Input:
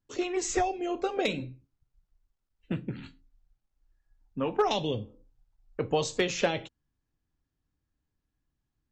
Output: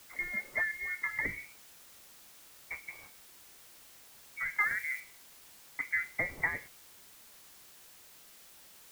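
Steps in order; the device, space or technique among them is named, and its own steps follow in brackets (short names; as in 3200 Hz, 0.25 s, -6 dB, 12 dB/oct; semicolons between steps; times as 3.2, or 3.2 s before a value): scrambled radio voice (BPF 310–3100 Hz; inverted band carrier 2500 Hz; white noise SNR 16 dB); 4.6–5 high shelf 4600 Hz +5.5 dB; gain -4.5 dB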